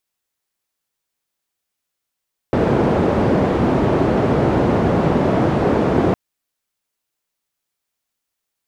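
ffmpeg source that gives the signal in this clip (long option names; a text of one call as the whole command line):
ffmpeg -f lavfi -i "anoisesrc=color=white:duration=3.61:sample_rate=44100:seed=1,highpass=frequency=81,lowpass=frequency=460,volume=6dB" out.wav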